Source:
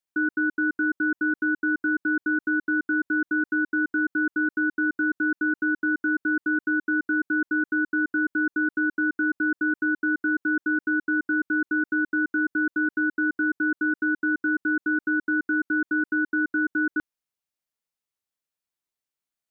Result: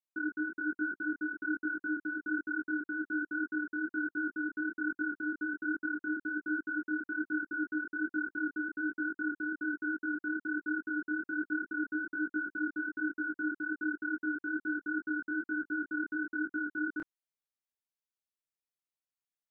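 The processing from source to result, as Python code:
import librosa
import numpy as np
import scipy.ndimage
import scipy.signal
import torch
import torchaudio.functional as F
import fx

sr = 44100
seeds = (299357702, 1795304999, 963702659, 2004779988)

y = fx.detune_double(x, sr, cents=42)
y = F.gain(torch.from_numpy(y), -6.5).numpy()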